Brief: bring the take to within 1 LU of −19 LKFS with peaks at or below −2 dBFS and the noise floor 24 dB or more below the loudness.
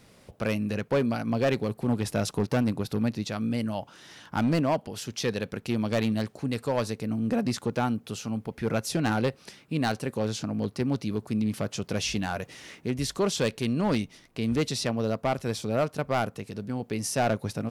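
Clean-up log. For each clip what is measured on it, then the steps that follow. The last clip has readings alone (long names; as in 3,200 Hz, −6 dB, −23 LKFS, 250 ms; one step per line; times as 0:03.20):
share of clipped samples 1.2%; peaks flattened at −19.0 dBFS; integrated loudness −29.0 LKFS; sample peak −19.0 dBFS; target loudness −19.0 LKFS
→ clipped peaks rebuilt −19 dBFS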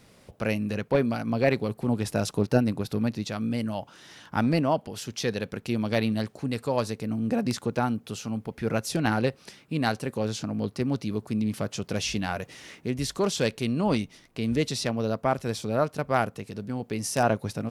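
share of clipped samples 0.0%; integrated loudness −28.0 LKFS; sample peak −10.0 dBFS; target loudness −19.0 LKFS
→ level +9 dB
brickwall limiter −2 dBFS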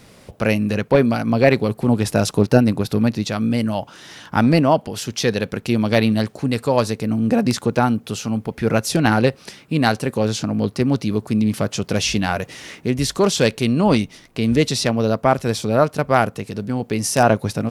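integrated loudness −19.5 LKFS; sample peak −2.0 dBFS; background noise floor −48 dBFS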